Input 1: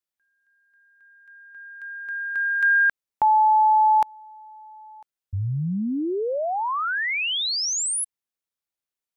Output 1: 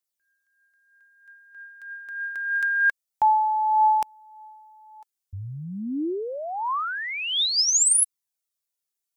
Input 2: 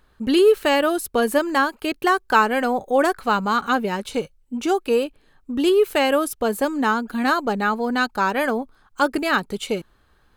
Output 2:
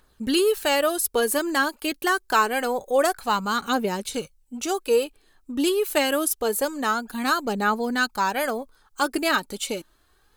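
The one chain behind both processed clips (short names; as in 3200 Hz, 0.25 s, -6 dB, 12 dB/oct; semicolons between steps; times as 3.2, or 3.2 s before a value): tone controls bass -3 dB, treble +10 dB; phaser 0.26 Hz, delay 3.7 ms, feedback 38%; gain -4 dB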